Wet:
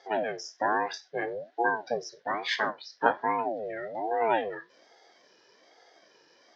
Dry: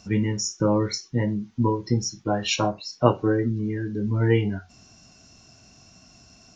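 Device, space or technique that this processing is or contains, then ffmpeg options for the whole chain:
voice changer toy: -af "aeval=exprs='val(0)*sin(2*PI*420*n/s+420*0.45/1.2*sin(2*PI*1.2*n/s))':channel_layout=same,highpass=480,equalizer=frequency=1200:width_type=q:width=4:gain=-5,equalizer=frequency=1700:width_type=q:width=4:gain=9,equalizer=frequency=2600:width_type=q:width=4:gain=-6,lowpass=frequency=4300:width=0.5412,lowpass=frequency=4300:width=1.3066"

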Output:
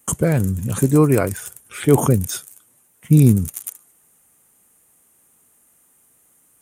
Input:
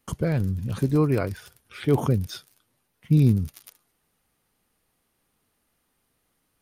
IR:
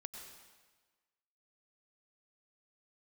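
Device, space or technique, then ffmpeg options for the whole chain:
budget condenser microphone: -af "highpass=frequency=110:poles=1,highshelf=frequency=6000:width_type=q:width=3:gain=8.5,volume=8dB"

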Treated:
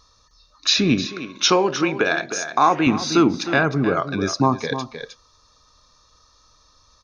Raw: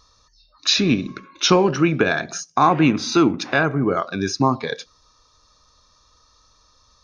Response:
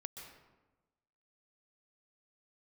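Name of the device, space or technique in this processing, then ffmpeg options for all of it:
ducked delay: -filter_complex "[0:a]asplit=3[link_01][link_02][link_03];[link_02]adelay=310,volume=-6dB[link_04];[link_03]apad=whole_len=323939[link_05];[link_04][link_05]sidechaincompress=threshold=-20dB:ratio=8:attack=30:release=862[link_06];[link_01][link_06]amix=inputs=2:normalize=0,asettb=1/sr,asplit=3[link_07][link_08][link_09];[link_07]atrim=end=1.054[link_10];[link_08]atrim=start=1.05:end=2.87,asetpts=PTS-STARTPTS,afade=type=in:duration=0.004:curve=qsin,afade=type=out:start_time=1.816:duration=0.004:curve=qsin,bass=frequency=250:gain=-12,treble=frequency=4000:gain=2[link_11];[link_09]atrim=start=2.866[link_12];[link_10][link_11]acrossfade=duration=0.004:curve1=hsin:curve2=qsin[link_13];[link_13][link_12]acrossfade=duration=0.004:curve1=qsin:curve2=hsin"

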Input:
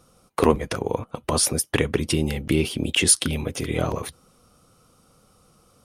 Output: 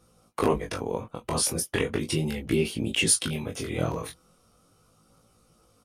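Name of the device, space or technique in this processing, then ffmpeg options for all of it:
double-tracked vocal: -filter_complex "[0:a]asplit=2[link_01][link_02];[link_02]adelay=18,volume=-6dB[link_03];[link_01][link_03]amix=inputs=2:normalize=0,flanger=delay=17.5:depth=6.8:speed=0.37,volume=-2.5dB"

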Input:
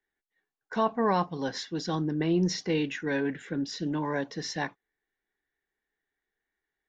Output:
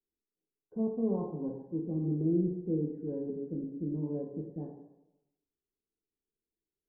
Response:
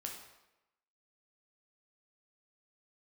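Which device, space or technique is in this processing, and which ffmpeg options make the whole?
next room: -filter_complex "[0:a]asettb=1/sr,asplit=3[link_01][link_02][link_03];[link_01]atrim=end=1.144[link_04];[link_02]atrim=start=1.14:end=1.8,asetpts=PTS-STARTPTS,afade=type=in:duration=0.004:curve=qsin,afade=type=out:start_time=0.656:duration=0.004:curve=qsin,equalizer=frequency=1000:width_type=o:width=0.39:gain=12.5[link_05];[link_03]atrim=start=1.796[link_06];[link_04][link_05]acrossfade=duration=0.004:curve1=hsin:curve2=qsin[link_07];[link_07][link_06]acrossfade=duration=0.004:curve1=qsin:curve2=hsin,lowpass=frequency=450:width=0.5412,lowpass=frequency=450:width=1.3066[link_08];[1:a]atrim=start_sample=2205[link_09];[link_08][link_09]afir=irnorm=-1:irlink=0"

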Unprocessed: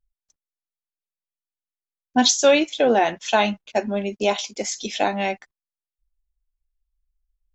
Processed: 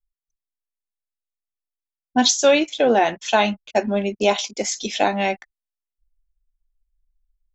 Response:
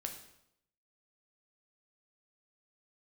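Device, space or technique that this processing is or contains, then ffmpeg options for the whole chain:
voice memo with heavy noise removal: -af "anlmdn=0.0398,dynaudnorm=framelen=130:gausssize=5:maxgain=10.5dB,volume=-3.5dB"

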